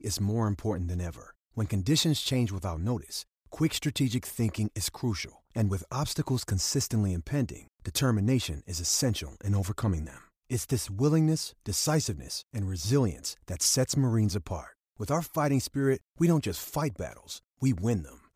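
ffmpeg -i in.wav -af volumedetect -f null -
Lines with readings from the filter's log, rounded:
mean_volume: -29.4 dB
max_volume: -12.6 dB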